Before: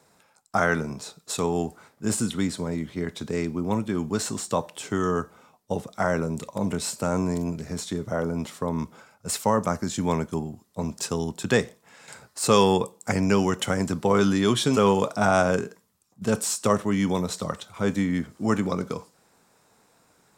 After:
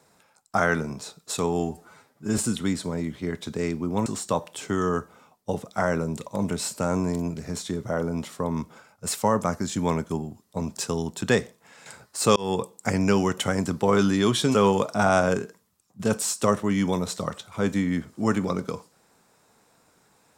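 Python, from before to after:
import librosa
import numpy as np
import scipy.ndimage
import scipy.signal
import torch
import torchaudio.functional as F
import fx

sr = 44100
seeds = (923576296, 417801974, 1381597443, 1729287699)

y = fx.edit(x, sr, fx.stretch_span(start_s=1.6, length_s=0.52, factor=1.5),
    fx.cut(start_s=3.8, length_s=0.48),
    fx.fade_in_span(start_s=12.58, length_s=0.27), tone=tone)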